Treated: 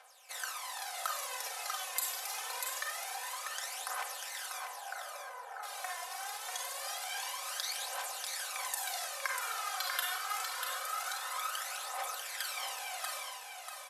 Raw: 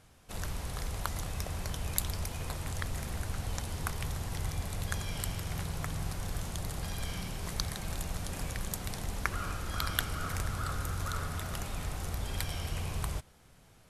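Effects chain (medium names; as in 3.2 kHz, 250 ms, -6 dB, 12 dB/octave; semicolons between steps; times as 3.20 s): 4.57–5.63 s: low-pass 1.5 kHz 24 dB/octave; Schroeder reverb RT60 0.6 s, combs from 31 ms, DRR 0 dB; compression 3:1, threshold -34 dBFS, peak gain reduction 9 dB; phaser 0.25 Hz, delay 2.9 ms, feedback 66%; steep high-pass 620 Hz 36 dB/octave; comb 3.9 ms, depth 60%; feedback delay 642 ms, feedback 26%, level -5.5 dB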